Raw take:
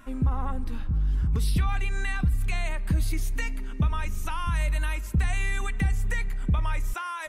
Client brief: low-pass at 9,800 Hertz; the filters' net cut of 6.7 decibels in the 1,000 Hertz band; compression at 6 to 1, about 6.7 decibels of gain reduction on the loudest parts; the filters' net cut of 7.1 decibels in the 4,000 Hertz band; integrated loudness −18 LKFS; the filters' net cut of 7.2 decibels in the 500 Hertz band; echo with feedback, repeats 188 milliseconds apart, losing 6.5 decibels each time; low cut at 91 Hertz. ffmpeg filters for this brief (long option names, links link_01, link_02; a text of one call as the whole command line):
ffmpeg -i in.wav -af "highpass=91,lowpass=9800,equalizer=frequency=500:width_type=o:gain=-8,equalizer=frequency=1000:width_type=o:gain=-6,equalizer=frequency=4000:width_type=o:gain=-9,acompressor=threshold=-30dB:ratio=6,aecho=1:1:188|376|564|752|940|1128:0.473|0.222|0.105|0.0491|0.0231|0.0109,volume=18.5dB" out.wav